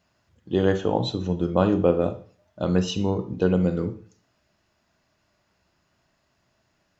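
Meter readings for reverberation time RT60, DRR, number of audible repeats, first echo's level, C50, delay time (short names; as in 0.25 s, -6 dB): 0.45 s, 9.0 dB, none, none, 12.0 dB, none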